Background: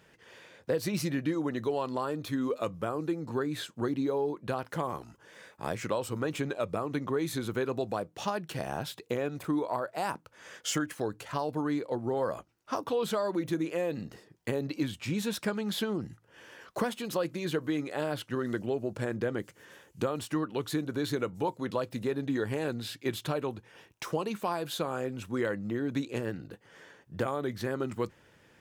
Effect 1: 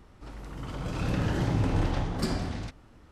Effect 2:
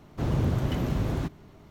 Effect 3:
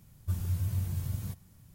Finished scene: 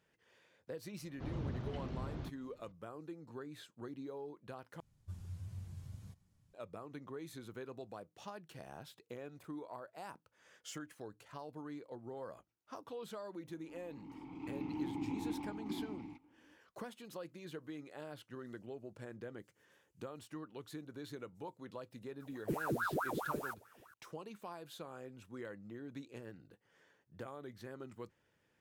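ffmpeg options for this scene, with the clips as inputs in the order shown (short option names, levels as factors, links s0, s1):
-filter_complex "[3:a]asplit=2[s0][s1];[0:a]volume=0.158[s2];[2:a]lowpass=f=5500:w=0.5412,lowpass=f=5500:w=1.3066[s3];[s0]lowpass=8100[s4];[1:a]asplit=3[s5][s6][s7];[s5]bandpass=f=300:t=q:w=8,volume=1[s8];[s6]bandpass=f=870:t=q:w=8,volume=0.501[s9];[s7]bandpass=f=2240:t=q:w=8,volume=0.355[s10];[s8][s9][s10]amix=inputs=3:normalize=0[s11];[s1]aeval=exprs='val(0)*sin(2*PI*890*n/s+890*0.75/4.7*sin(2*PI*4.7*n/s))':c=same[s12];[s2]asplit=2[s13][s14];[s13]atrim=end=4.804[s15];[s4]atrim=end=1.74,asetpts=PTS-STARTPTS,volume=0.178[s16];[s14]atrim=start=6.536[s17];[s3]atrim=end=1.7,asetpts=PTS-STARTPTS,volume=0.178,afade=t=in:d=0.004:c=hsin,afade=t=out:st=1.696:d=0.004:c=hsin,adelay=1020[s18];[s11]atrim=end=3.11,asetpts=PTS-STARTPTS,volume=0.841,afade=t=in:d=0.004:c=hsin,afade=t=out:st=3.106:d=0.004:c=hsin,adelay=13470[s19];[s12]atrim=end=1.74,asetpts=PTS-STARTPTS,volume=0.668,afade=t=in:d=0.004:c=hsin,afade=t=out:st=1.736:d=0.004:c=hsin,adelay=22200[s20];[s15][s16]acrossfade=d=0.004:c1=hsin:c2=hsin[s21];[s21][s17]acrossfade=d=0.004:c1=hsin:c2=hsin[s22];[s22][s18][s19][s20]amix=inputs=4:normalize=0"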